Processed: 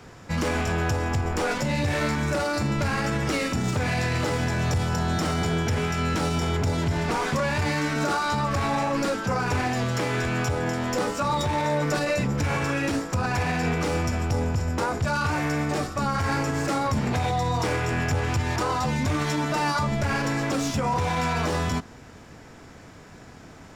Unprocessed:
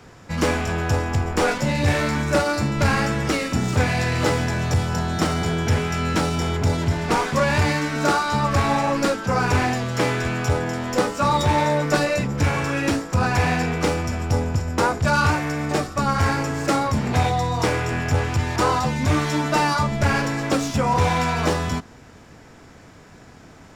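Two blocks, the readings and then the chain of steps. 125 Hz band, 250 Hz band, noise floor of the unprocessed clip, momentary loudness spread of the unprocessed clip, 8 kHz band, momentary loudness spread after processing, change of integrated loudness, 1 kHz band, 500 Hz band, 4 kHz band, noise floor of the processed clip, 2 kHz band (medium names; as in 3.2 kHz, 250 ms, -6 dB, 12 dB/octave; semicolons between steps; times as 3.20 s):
-4.0 dB, -3.5 dB, -46 dBFS, 4 LU, -3.5 dB, 2 LU, -4.0 dB, -4.5 dB, -4.0 dB, -3.5 dB, -46 dBFS, -4.0 dB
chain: peak limiter -16.5 dBFS, peak gain reduction 9.5 dB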